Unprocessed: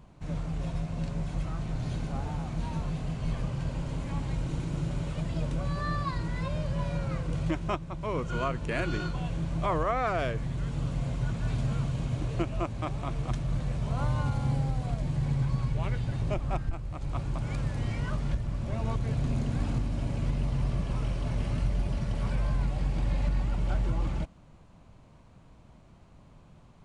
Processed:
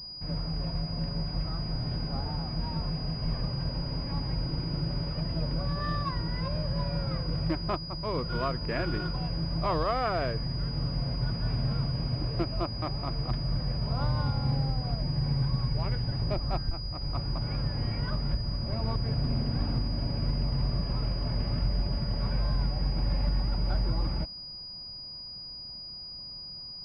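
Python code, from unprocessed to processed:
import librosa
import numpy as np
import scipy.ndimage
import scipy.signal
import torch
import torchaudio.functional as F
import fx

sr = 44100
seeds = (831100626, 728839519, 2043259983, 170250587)

y = fx.pwm(x, sr, carrier_hz=4900.0)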